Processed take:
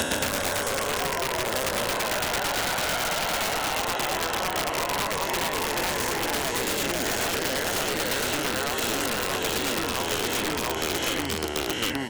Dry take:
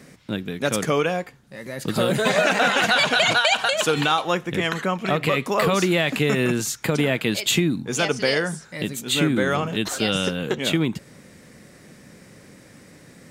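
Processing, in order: reverse spectral sustain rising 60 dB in 1.92 s; tempo 1.1×; tremolo saw down 9 Hz, depth 65%; peaking EQ 970 Hz +13 dB 1 oct; hum notches 60/120/180 Hz; ever faster or slower copies 108 ms, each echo -1 st, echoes 3; compression 16:1, threshold -21 dBFS, peak gain reduction 16 dB; resonant low shelf 100 Hz +10.5 dB, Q 3; comb of notches 1.2 kHz; integer overflow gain 20 dB; three bands compressed up and down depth 100%

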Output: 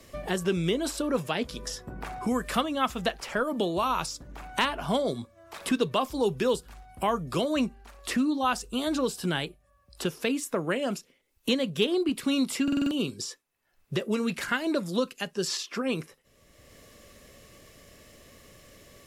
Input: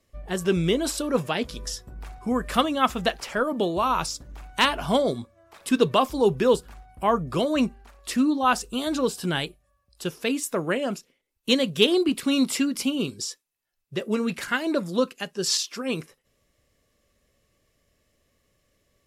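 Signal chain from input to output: buffer glitch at 12.63 s, samples 2048, times 5; three bands compressed up and down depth 70%; trim -4 dB

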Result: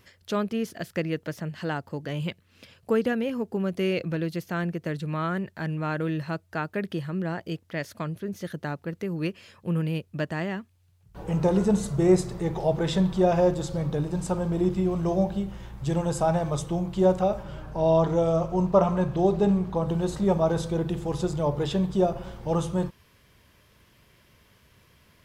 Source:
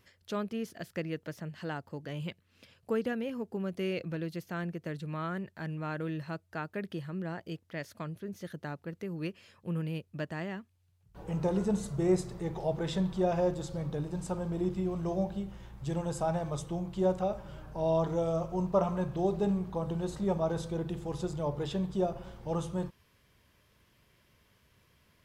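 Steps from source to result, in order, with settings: 17.43–19.89 s: treble shelf 8.7 kHz -6.5 dB; trim +7.5 dB

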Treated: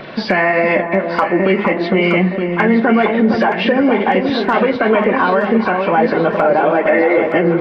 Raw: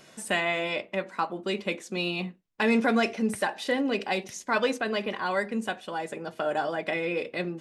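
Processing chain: knee-point frequency compression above 1.5 kHz 1.5:1; 6.60–7.18 s: steep high-pass 250 Hz 72 dB/octave; compression 10:1, threshold -32 dBFS, peak gain reduction 13 dB; Gaussian low-pass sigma 2.6 samples; hard clipper -24.5 dBFS, distortion -31 dB; flange 1.6 Hz, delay 1.3 ms, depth 4.4 ms, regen +70%; echo whose repeats swap between lows and highs 460 ms, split 1.2 kHz, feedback 66%, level -6.5 dB; on a send at -17 dB: reverberation, pre-delay 38 ms; on the sum: loudness maximiser +31.5 dB; trim -3 dB

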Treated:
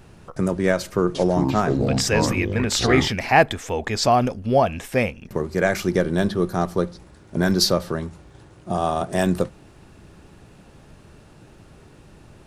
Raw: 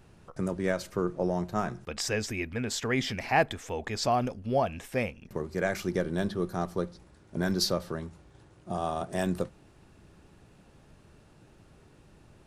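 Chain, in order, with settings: 0.80–3.08 s: ever faster or slower copies 347 ms, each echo -5 st, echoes 2; trim +9 dB

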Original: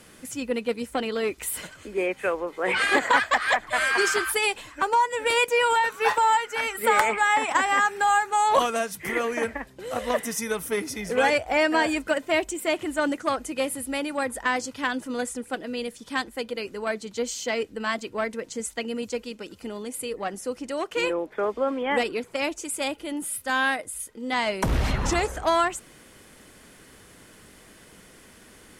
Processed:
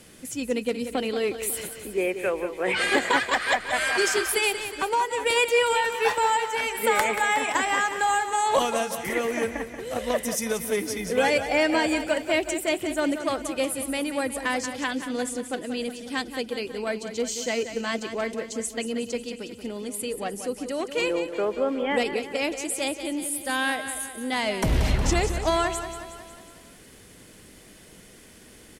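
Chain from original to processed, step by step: peaking EQ 1.2 kHz -6.5 dB 1.3 oct; on a send: feedback delay 182 ms, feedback 56%, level -10 dB; on the sum: trim +1.5 dB

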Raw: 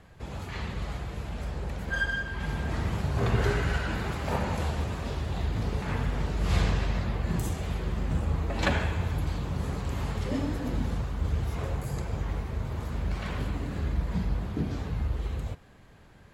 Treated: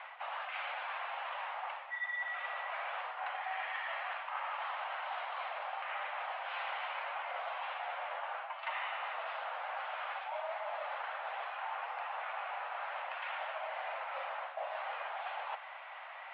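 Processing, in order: mistuned SSB +350 Hz 330–2800 Hz; reverse; compression 8:1, threshold -50 dBFS, peak gain reduction 26 dB; reverse; trim +12.5 dB

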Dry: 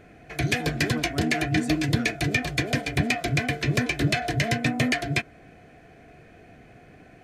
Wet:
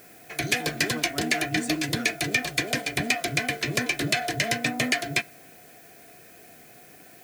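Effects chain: high-pass 330 Hz 6 dB/octave; treble shelf 5.6 kHz +8 dB; added noise blue -53 dBFS; on a send: reverberation RT60 0.50 s, pre-delay 5 ms, DRR 23 dB

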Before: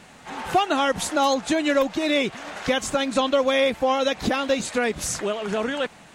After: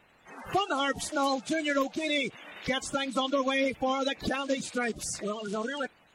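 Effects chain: coarse spectral quantiser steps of 30 dB; spectral noise reduction 7 dB; trim -6.5 dB

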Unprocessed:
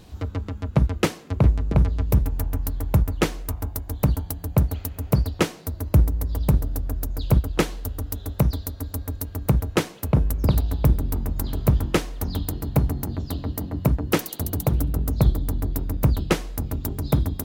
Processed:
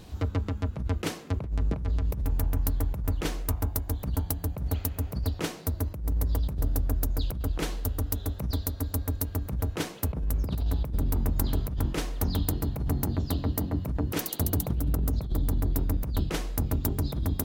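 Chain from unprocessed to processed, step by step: compressor with a negative ratio -24 dBFS, ratio -1; trim -2.5 dB

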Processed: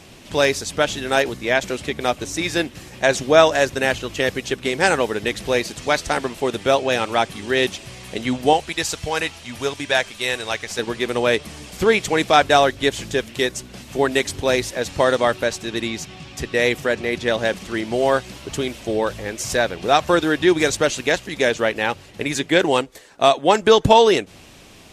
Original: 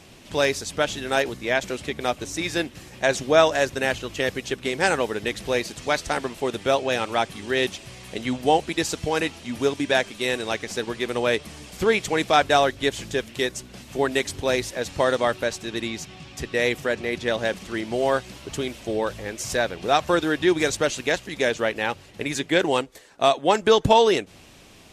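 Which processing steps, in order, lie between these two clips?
8.53–10.79 s: peaking EQ 270 Hz -9.5 dB 1.8 oct; trim +4 dB

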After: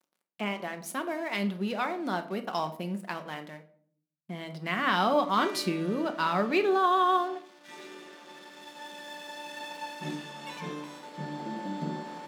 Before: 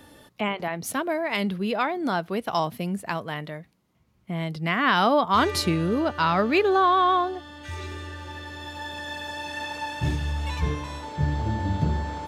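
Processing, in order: crossover distortion -42.5 dBFS; brick-wall FIR high-pass 160 Hz; simulated room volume 660 m³, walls furnished, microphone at 1 m; trim -5.5 dB

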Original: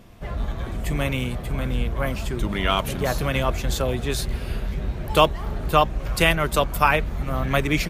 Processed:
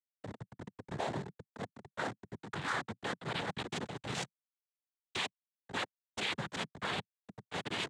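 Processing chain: band-pass sweep 530 Hz -> 3.2 kHz, 0.71–4.08 s; Schmitt trigger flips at -34.5 dBFS; rippled Chebyshev low-pass 4.3 kHz, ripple 3 dB; noise-vocoded speech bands 6; trim +2.5 dB

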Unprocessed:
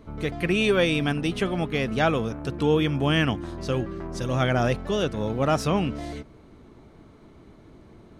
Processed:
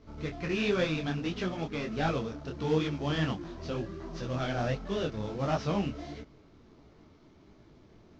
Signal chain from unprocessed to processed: CVSD coder 32 kbps; detune thickener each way 50 cents; trim -3.5 dB

